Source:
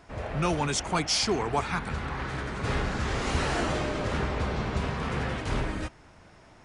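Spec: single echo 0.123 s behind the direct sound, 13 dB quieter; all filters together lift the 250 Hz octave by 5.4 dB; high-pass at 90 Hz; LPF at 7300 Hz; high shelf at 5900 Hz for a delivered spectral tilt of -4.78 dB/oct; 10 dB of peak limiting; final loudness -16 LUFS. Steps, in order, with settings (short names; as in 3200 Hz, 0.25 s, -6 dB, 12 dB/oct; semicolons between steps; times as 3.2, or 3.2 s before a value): HPF 90 Hz; LPF 7300 Hz; bell 250 Hz +7.5 dB; high shelf 5900 Hz -6.5 dB; limiter -23.5 dBFS; echo 0.123 s -13 dB; gain +16 dB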